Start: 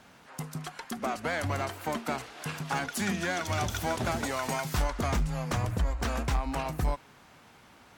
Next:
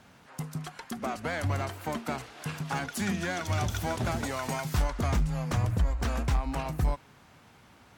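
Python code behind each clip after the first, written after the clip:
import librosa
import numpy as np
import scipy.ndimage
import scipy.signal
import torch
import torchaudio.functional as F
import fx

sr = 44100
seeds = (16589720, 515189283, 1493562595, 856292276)

y = fx.peak_eq(x, sr, hz=92.0, db=6.0, octaves=2.2)
y = y * 10.0 ** (-2.0 / 20.0)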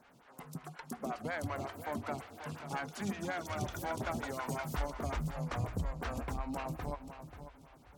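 y = fx.echo_feedback(x, sr, ms=536, feedback_pct=25, wet_db=-11.0)
y = fx.room_shoebox(y, sr, seeds[0], volume_m3=2800.0, walls='mixed', distance_m=0.3)
y = fx.stagger_phaser(y, sr, hz=5.5)
y = y * 10.0 ** (-3.5 / 20.0)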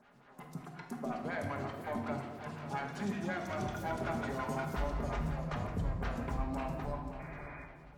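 y = fx.high_shelf(x, sr, hz=5900.0, db=-10.0)
y = fx.spec_paint(y, sr, seeds[1], shape='noise', start_s=7.19, length_s=0.47, low_hz=280.0, high_hz=2500.0, level_db=-51.0)
y = fx.room_shoebox(y, sr, seeds[2], volume_m3=1000.0, walls='mixed', distance_m=1.3)
y = y * 10.0 ** (-1.5 / 20.0)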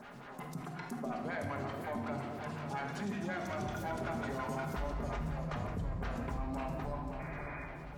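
y = fx.env_flatten(x, sr, amount_pct=50)
y = y * 10.0 ** (-4.0 / 20.0)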